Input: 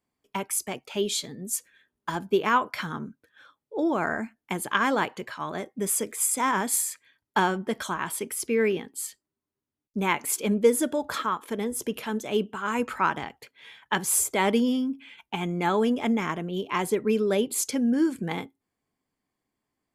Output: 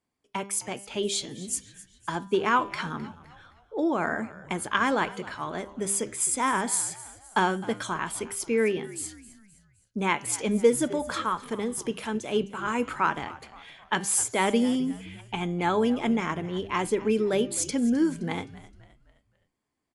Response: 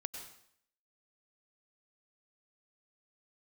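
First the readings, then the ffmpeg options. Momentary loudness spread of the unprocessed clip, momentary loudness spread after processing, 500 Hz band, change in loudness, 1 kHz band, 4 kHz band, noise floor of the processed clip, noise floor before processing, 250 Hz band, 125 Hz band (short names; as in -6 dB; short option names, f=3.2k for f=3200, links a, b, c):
12 LU, 12 LU, -0.5 dB, -0.5 dB, -0.5 dB, -0.5 dB, -70 dBFS, under -85 dBFS, -0.5 dB, 0.0 dB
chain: -filter_complex "[0:a]bandreject=f=198.8:t=h:w=4,bandreject=f=397.6:t=h:w=4,bandreject=f=596.4:t=h:w=4,bandreject=f=795.2:t=h:w=4,bandreject=f=994:t=h:w=4,bandreject=f=1.1928k:t=h:w=4,bandreject=f=1.3916k:t=h:w=4,bandreject=f=1.5904k:t=h:w=4,bandreject=f=1.7892k:t=h:w=4,bandreject=f=1.988k:t=h:w=4,bandreject=f=2.1868k:t=h:w=4,bandreject=f=2.3856k:t=h:w=4,bandreject=f=2.5844k:t=h:w=4,bandreject=f=2.7832k:t=h:w=4,bandreject=f=2.982k:t=h:w=4,bandreject=f=3.1808k:t=h:w=4,bandreject=f=3.3796k:t=h:w=4,bandreject=f=3.5784k:t=h:w=4,bandreject=f=3.7772k:t=h:w=4,bandreject=f=3.976k:t=h:w=4,bandreject=f=4.1748k:t=h:w=4,bandreject=f=4.3736k:t=h:w=4,bandreject=f=4.5724k:t=h:w=4,bandreject=f=4.7712k:t=h:w=4,bandreject=f=4.97k:t=h:w=4,bandreject=f=5.1688k:t=h:w=4,bandreject=f=5.3676k:t=h:w=4,bandreject=f=5.5664k:t=h:w=4,bandreject=f=5.7652k:t=h:w=4,bandreject=f=5.964k:t=h:w=4,bandreject=f=6.1628k:t=h:w=4,bandreject=f=6.3616k:t=h:w=4,bandreject=f=6.5604k:t=h:w=4,bandreject=f=6.7592k:t=h:w=4,bandreject=f=6.958k:t=h:w=4,asplit=2[a][b];[b]asplit=4[c][d][e][f];[c]adelay=260,afreqshift=-71,volume=-18dB[g];[d]adelay=520,afreqshift=-142,volume=-25.1dB[h];[e]adelay=780,afreqshift=-213,volume=-32.3dB[i];[f]adelay=1040,afreqshift=-284,volume=-39.4dB[j];[g][h][i][j]amix=inputs=4:normalize=0[k];[a][k]amix=inputs=2:normalize=0" -ar 24000 -c:a libmp3lame -b:a 80k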